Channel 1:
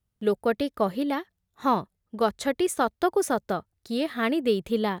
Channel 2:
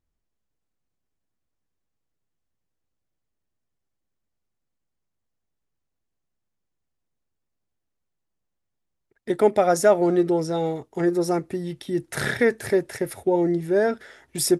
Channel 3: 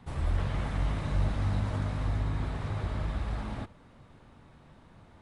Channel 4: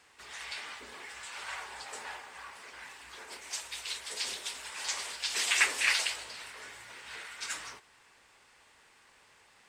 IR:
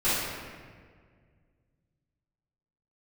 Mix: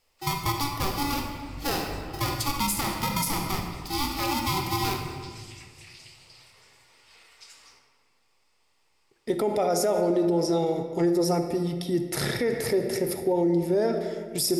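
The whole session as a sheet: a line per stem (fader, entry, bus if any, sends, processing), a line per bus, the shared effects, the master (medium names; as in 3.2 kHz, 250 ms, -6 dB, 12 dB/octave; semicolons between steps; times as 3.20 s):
-5.0 dB, 0.00 s, send -14.5 dB, treble shelf 4.1 kHz +10.5 dB; polarity switched at an audio rate 570 Hz
0.0 dB, 0.00 s, send -20 dB, none
-12.5 dB, 0.75 s, no send, none
-12.5 dB, 0.00 s, send -15 dB, compression, threshold -37 dBFS, peak gain reduction 16 dB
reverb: on, RT60 1.8 s, pre-delay 4 ms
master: graphic EQ with 31 bands 1.6 kHz -11 dB, 5 kHz +8 dB, 12.5 kHz +8 dB; peak limiter -16 dBFS, peak gain reduction 10.5 dB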